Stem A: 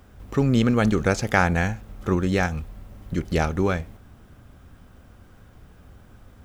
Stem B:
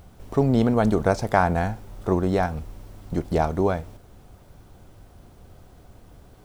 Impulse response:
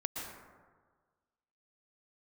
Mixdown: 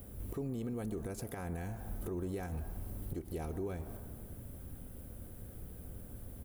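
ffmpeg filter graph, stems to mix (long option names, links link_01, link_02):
-filter_complex "[0:a]firequalizer=gain_entry='entry(550,0);entry(840,-19);entry(1800,-10);entry(5700,-10);entry(10000,13)':delay=0.05:min_phase=1,volume=0.5dB[link_01];[1:a]acompressor=threshold=-26dB:ratio=6,adelay=3.5,volume=-13.5dB,asplit=3[link_02][link_03][link_04];[link_03]volume=-7dB[link_05];[link_04]apad=whole_len=288661[link_06];[link_01][link_06]sidechaincompress=threshold=-49dB:ratio=8:attack=11:release=287[link_07];[2:a]atrim=start_sample=2205[link_08];[link_05][link_08]afir=irnorm=-1:irlink=0[link_09];[link_07][link_02][link_09]amix=inputs=3:normalize=0,alimiter=level_in=6.5dB:limit=-24dB:level=0:latency=1:release=171,volume=-6.5dB"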